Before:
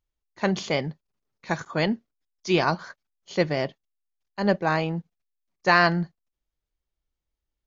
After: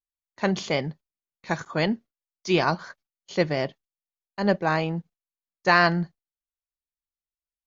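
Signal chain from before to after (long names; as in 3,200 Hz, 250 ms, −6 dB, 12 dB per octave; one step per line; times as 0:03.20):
noise gate with hold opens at −42 dBFS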